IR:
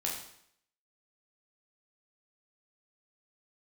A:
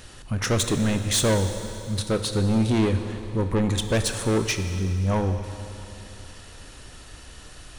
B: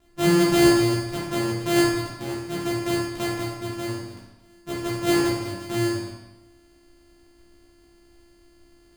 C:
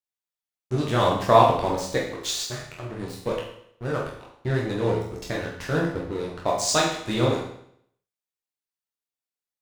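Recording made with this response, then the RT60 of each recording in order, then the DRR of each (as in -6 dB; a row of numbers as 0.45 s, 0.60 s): C; 2.9 s, 1.0 s, 0.70 s; 7.0 dB, -7.0 dB, -3.5 dB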